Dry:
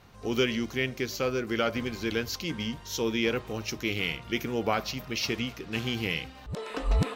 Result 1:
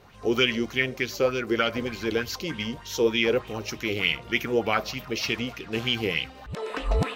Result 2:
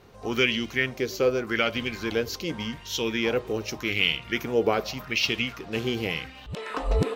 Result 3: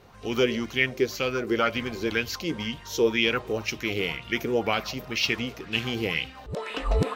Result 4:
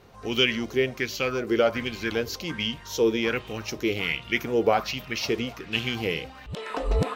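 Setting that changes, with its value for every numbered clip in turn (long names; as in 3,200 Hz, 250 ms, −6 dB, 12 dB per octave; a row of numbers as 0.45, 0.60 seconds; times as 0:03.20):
auto-filter bell, speed: 3.3, 0.85, 2, 1.3 Hertz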